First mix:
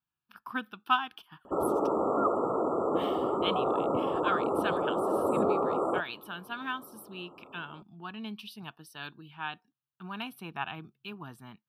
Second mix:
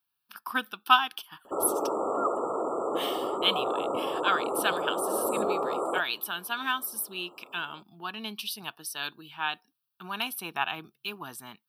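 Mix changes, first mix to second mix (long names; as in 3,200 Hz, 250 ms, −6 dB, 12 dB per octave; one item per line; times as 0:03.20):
speech +5.5 dB
master: add bass and treble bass −12 dB, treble +13 dB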